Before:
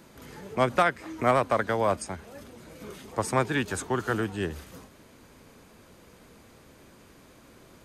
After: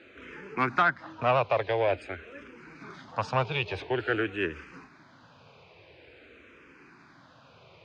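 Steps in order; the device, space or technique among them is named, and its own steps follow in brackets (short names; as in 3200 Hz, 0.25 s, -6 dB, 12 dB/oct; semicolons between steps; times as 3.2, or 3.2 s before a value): barber-pole phaser into a guitar amplifier (endless phaser -0.48 Hz; soft clip -19 dBFS, distortion -15 dB; speaker cabinet 93–4500 Hz, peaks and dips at 210 Hz -10 dB, 1500 Hz +5 dB, 2500 Hz +9 dB); 0.81–1.22 high shelf 4300 Hz -7.5 dB; gain +2.5 dB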